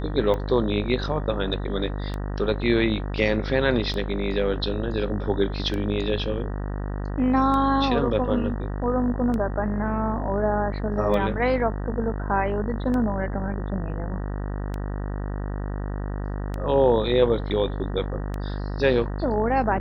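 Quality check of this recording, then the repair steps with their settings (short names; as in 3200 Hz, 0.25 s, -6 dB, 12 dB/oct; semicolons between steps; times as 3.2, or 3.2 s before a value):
buzz 50 Hz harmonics 38 -29 dBFS
tick 33 1/3 rpm -18 dBFS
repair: de-click; de-hum 50 Hz, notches 38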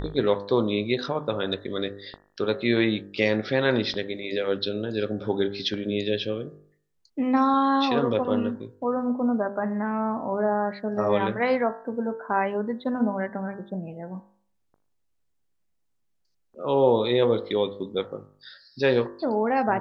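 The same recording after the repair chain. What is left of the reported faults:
none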